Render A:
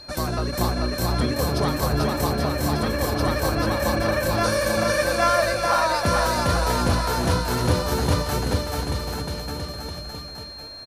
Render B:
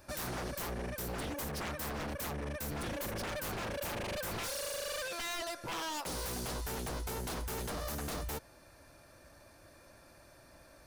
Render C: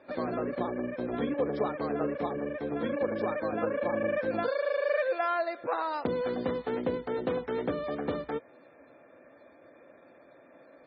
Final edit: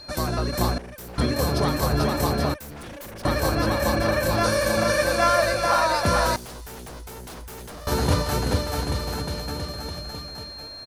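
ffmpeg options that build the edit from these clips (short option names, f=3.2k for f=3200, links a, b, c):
-filter_complex "[1:a]asplit=3[a][b][c];[0:a]asplit=4[d][e][f][g];[d]atrim=end=0.782[h];[a]atrim=start=0.778:end=1.182[i];[e]atrim=start=1.178:end=2.542[j];[b]atrim=start=2.538:end=3.252[k];[f]atrim=start=3.248:end=6.362[l];[c]atrim=start=6.358:end=7.872[m];[g]atrim=start=7.868[n];[h][i]acrossfade=d=0.004:c1=hsin:c2=hsin[o];[o][j]acrossfade=d=0.004:c1=hsin:c2=hsin[p];[p][k]acrossfade=d=0.004:c1=hsin:c2=hsin[q];[q][l]acrossfade=d=0.004:c1=hsin:c2=hsin[r];[r][m]acrossfade=d=0.004:c1=hsin:c2=hsin[s];[s][n]acrossfade=d=0.004:c1=hsin:c2=hsin"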